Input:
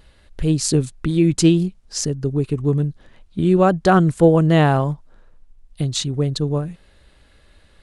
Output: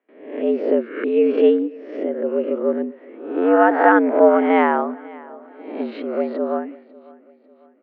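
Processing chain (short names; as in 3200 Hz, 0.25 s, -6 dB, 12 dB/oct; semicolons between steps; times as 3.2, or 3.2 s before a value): spectral swells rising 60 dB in 0.65 s; gate with hold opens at -37 dBFS; pitch shift +1 st; on a send: feedback echo 0.547 s, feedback 45%, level -22 dB; on the sum: mistuned SSB +94 Hz 180–2400 Hz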